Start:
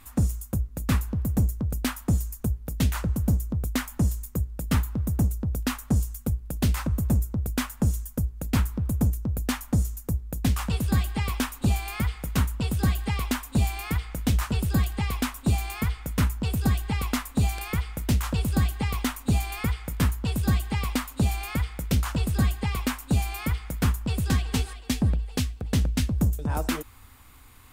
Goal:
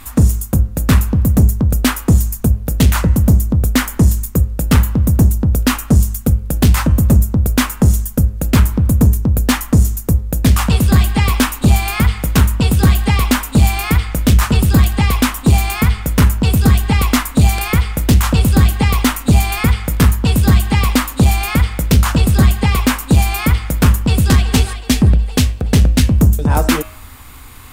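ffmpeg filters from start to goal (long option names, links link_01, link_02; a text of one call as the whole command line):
ffmpeg -i in.wav -af "aeval=exprs='0.316*sin(PI/2*1.78*val(0)/0.316)':channel_layout=same,bandreject=frequency=104.3:width_type=h:width=4,bandreject=frequency=208.6:width_type=h:width=4,bandreject=frequency=312.9:width_type=h:width=4,bandreject=frequency=417.2:width_type=h:width=4,bandreject=frequency=521.5:width_type=h:width=4,bandreject=frequency=625.8:width_type=h:width=4,bandreject=frequency=730.1:width_type=h:width=4,bandreject=frequency=834.4:width_type=h:width=4,bandreject=frequency=938.7:width_type=h:width=4,bandreject=frequency=1043:width_type=h:width=4,bandreject=frequency=1147.3:width_type=h:width=4,bandreject=frequency=1251.6:width_type=h:width=4,bandreject=frequency=1355.9:width_type=h:width=4,bandreject=frequency=1460.2:width_type=h:width=4,bandreject=frequency=1564.5:width_type=h:width=4,bandreject=frequency=1668.8:width_type=h:width=4,bandreject=frequency=1773.1:width_type=h:width=4,bandreject=frequency=1877.4:width_type=h:width=4,bandreject=frequency=1981.7:width_type=h:width=4,bandreject=frequency=2086:width_type=h:width=4,bandreject=frequency=2190.3:width_type=h:width=4,bandreject=frequency=2294.6:width_type=h:width=4,bandreject=frequency=2398.9:width_type=h:width=4,bandreject=frequency=2503.2:width_type=h:width=4,bandreject=frequency=2607.5:width_type=h:width=4,bandreject=frequency=2711.8:width_type=h:width=4,bandreject=frequency=2816.1:width_type=h:width=4,bandreject=frequency=2920.4:width_type=h:width=4,bandreject=frequency=3024.7:width_type=h:width=4,bandreject=frequency=3129:width_type=h:width=4,volume=6dB" out.wav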